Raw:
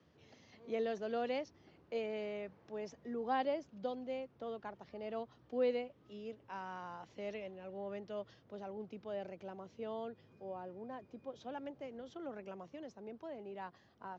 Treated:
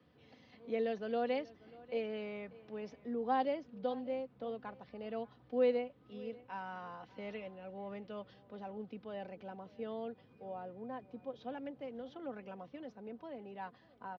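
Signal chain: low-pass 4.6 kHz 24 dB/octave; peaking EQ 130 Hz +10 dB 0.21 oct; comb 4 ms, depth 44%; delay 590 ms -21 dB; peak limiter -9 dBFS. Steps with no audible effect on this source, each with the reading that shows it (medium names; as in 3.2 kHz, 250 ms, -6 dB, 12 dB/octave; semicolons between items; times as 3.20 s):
peak limiter -9 dBFS: peak at its input -21.5 dBFS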